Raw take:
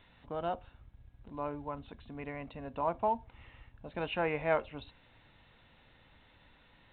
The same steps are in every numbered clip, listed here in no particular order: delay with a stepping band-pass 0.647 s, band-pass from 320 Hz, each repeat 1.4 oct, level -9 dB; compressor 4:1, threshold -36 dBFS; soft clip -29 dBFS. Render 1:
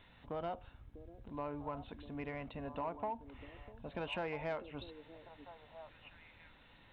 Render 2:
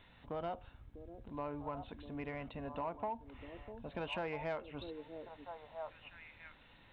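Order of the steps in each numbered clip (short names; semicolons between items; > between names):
compressor > delay with a stepping band-pass > soft clip; delay with a stepping band-pass > compressor > soft clip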